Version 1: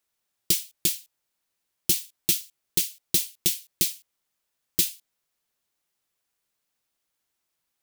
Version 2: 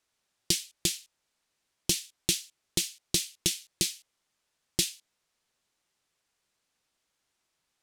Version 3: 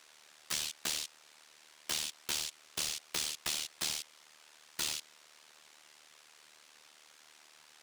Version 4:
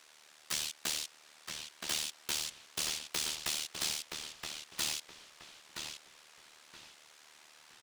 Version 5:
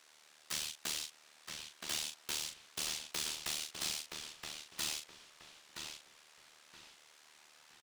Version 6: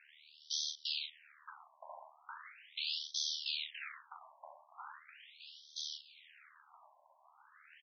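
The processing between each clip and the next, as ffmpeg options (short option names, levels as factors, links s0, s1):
-filter_complex "[0:a]lowpass=8400,asplit=2[s0][s1];[s1]acompressor=threshold=0.02:ratio=6,volume=0.944[s2];[s0][s2]amix=inputs=2:normalize=0,volume=0.794"
-filter_complex "[0:a]aeval=exprs='0.0596*(abs(mod(val(0)/0.0596+3,4)-2)-1)':c=same,asplit=2[s0][s1];[s1]highpass=f=720:p=1,volume=39.8,asoftclip=type=tanh:threshold=0.0631[s2];[s0][s2]amix=inputs=2:normalize=0,lowpass=f=5800:p=1,volume=0.501,tremolo=f=76:d=0.824"
-filter_complex "[0:a]asplit=2[s0][s1];[s1]adelay=972,lowpass=f=4300:p=1,volume=0.631,asplit=2[s2][s3];[s3]adelay=972,lowpass=f=4300:p=1,volume=0.31,asplit=2[s4][s5];[s5]adelay=972,lowpass=f=4300:p=1,volume=0.31,asplit=2[s6][s7];[s7]adelay=972,lowpass=f=4300:p=1,volume=0.31[s8];[s0][s2][s4][s6][s8]amix=inputs=5:normalize=0"
-filter_complex "[0:a]asplit=2[s0][s1];[s1]adelay=39,volume=0.473[s2];[s0][s2]amix=inputs=2:normalize=0,volume=0.631"
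-filter_complex "[0:a]asplit=2[s0][s1];[s1]aeval=exprs='0.0106*(abs(mod(val(0)/0.0106+3,4)-2)-1)':c=same,volume=0.282[s2];[s0][s2]amix=inputs=2:normalize=0,afftfilt=real='re*between(b*sr/1024,770*pow(4500/770,0.5+0.5*sin(2*PI*0.39*pts/sr))/1.41,770*pow(4500/770,0.5+0.5*sin(2*PI*0.39*pts/sr))*1.41)':imag='im*between(b*sr/1024,770*pow(4500/770,0.5+0.5*sin(2*PI*0.39*pts/sr))/1.41,770*pow(4500/770,0.5+0.5*sin(2*PI*0.39*pts/sr))*1.41)':win_size=1024:overlap=0.75,volume=1.58"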